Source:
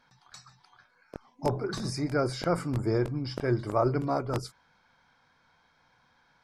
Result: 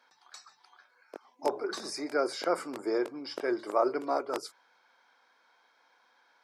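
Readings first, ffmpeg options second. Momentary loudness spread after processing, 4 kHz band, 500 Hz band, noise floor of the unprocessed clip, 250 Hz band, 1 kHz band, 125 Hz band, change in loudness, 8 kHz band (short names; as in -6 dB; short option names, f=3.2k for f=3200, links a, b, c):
23 LU, 0.0 dB, -0.5 dB, -67 dBFS, -5.0 dB, 0.0 dB, under -30 dB, -2.5 dB, 0.0 dB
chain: -af "highpass=f=330:w=0.5412,highpass=f=330:w=1.3066"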